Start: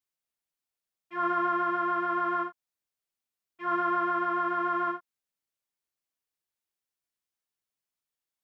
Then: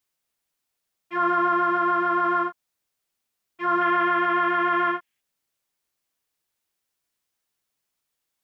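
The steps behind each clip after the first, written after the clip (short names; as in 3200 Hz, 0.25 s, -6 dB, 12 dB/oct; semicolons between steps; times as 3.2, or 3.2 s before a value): spectral gain 3.81–5.21, 1600–3500 Hz +8 dB; in parallel at +1.5 dB: limiter -28 dBFS, peak gain reduction 11.5 dB; on the sum: gain +2.5 dB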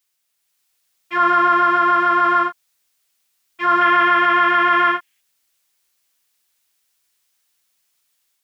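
AGC gain up to 4.5 dB; tilt shelf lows -6 dB, about 1100 Hz; gain +2.5 dB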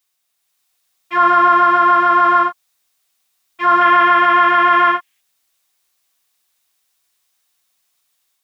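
small resonant body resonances 740/1100/3700 Hz, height 6 dB, ringing for 25 ms; gain +1 dB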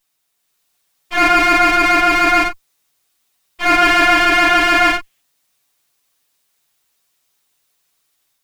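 minimum comb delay 7 ms; gain +2.5 dB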